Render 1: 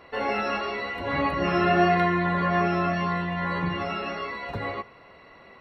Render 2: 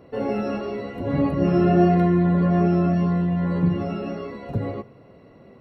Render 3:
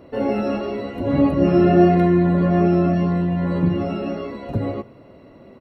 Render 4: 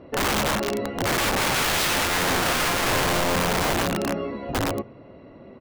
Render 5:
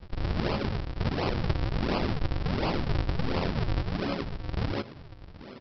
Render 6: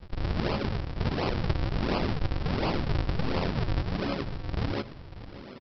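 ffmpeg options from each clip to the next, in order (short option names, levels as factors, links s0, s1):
-af "equalizer=f=125:t=o:w=1:g=11,equalizer=f=250:t=o:w=1:g=7,equalizer=f=500:t=o:w=1:g=4,equalizer=f=1000:t=o:w=1:g=-7,equalizer=f=2000:t=o:w=1:g=-9,equalizer=f=4000:t=o:w=1:g=-8"
-af "aecho=1:1:3.3:0.3,volume=1.5"
-af "lowpass=3800,aeval=exprs='(mod(7.94*val(0)+1,2)-1)/7.94':c=same"
-filter_complex "[0:a]acrossover=split=130|3000[s0][s1][s2];[s1]acompressor=threshold=0.0398:ratio=6[s3];[s0][s3][s2]amix=inputs=3:normalize=0,aresample=11025,acrusher=samples=30:mix=1:aa=0.000001:lfo=1:lforange=48:lforate=1.4,aresample=44100"
-af "aecho=1:1:591:0.178"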